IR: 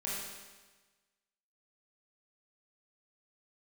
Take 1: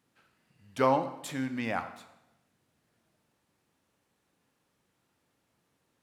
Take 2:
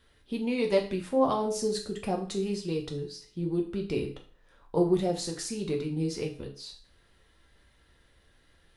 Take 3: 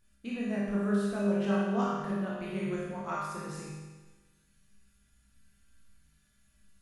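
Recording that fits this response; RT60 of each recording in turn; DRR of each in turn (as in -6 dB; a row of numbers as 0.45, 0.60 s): 3; 0.95, 0.40, 1.3 s; 9.5, 1.0, -7.0 dB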